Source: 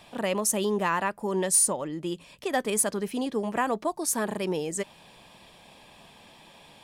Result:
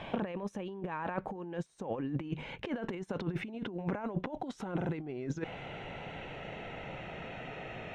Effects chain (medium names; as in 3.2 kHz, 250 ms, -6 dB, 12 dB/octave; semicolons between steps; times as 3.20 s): gliding tape speed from 95% -> 77%; peaking EQ 4.7 kHz -12.5 dB 0.26 oct; in parallel at -2 dB: level held to a coarse grid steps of 14 dB; on the sum: peak limiter -21 dBFS, peak gain reduction 10 dB; compressor with a negative ratio -35 dBFS, ratio -0.5; distance through air 290 m; trim +1 dB